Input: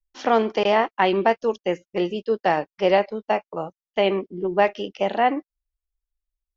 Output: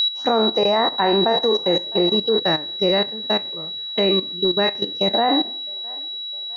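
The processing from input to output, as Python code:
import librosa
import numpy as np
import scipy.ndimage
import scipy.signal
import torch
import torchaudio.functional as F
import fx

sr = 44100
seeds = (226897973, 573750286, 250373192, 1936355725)

y = fx.spec_trails(x, sr, decay_s=0.86)
y = fx.env_phaser(y, sr, low_hz=210.0, high_hz=3400.0, full_db=-22.0)
y = fx.echo_thinned(y, sr, ms=658, feedback_pct=53, hz=280.0, wet_db=-20)
y = y + 10.0 ** (-20.0 / 20.0) * np.sin(2.0 * np.pi * 3900.0 * np.arange(len(y)) / sr)
y = fx.peak_eq(y, sr, hz=760.0, db=-11.5, octaves=1.0, at=(2.4, 5.14))
y = fx.dereverb_blind(y, sr, rt60_s=0.63)
y = fx.level_steps(y, sr, step_db=12)
y = fx.low_shelf(y, sr, hz=470.0, db=4.0)
y = fx.notch(y, sr, hz=2300.0, q=20.0)
y = y * librosa.db_to_amplitude(5.5)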